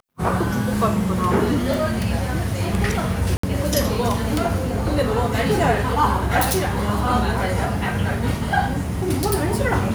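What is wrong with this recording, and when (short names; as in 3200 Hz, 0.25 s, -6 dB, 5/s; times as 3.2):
3.37–3.43 gap 64 ms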